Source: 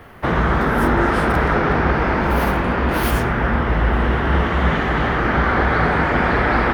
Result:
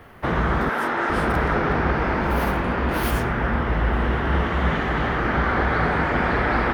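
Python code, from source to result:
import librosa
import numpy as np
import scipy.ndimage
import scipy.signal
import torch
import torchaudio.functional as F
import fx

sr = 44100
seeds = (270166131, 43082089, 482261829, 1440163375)

y = fx.weighting(x, sr, curve='A', at=(0.69, 1.1))
y = y * 10.0 ** (-4.0 / 20.0)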